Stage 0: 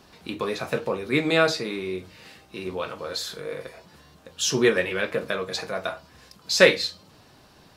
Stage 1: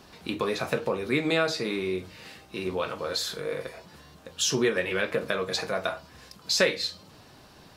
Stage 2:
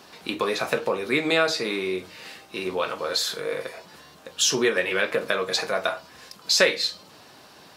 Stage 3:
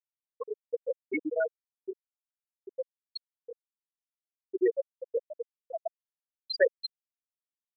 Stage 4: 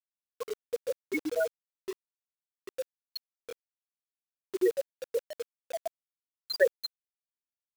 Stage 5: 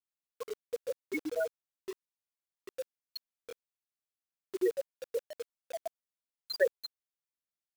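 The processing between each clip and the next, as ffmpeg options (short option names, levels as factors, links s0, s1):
-af "acompressor=threshold=0.0562:ratio=2.5,volume=1.19"
-af "highpass=f=380:p=1,volume=1.78"
-af "afftfilt=real='re*gte(hypot(re,im),0.631)':imag='im*gte(hypot(re,im),0.631)':win_size=1024:overlap=0.75,volume=0.841"
-af "acrusher=bits=6:mix=0:aa=0.000001"
-af "adynamicequalizer=threshold=0.00631:dfrequency=1700:dqfactor=0.7:tfrequency=1700:tqfactor=0.7:attack=5:release=100:ratio=0.375:range=2.5:mode=cutabove:tftype=highshelf,volume=0.668"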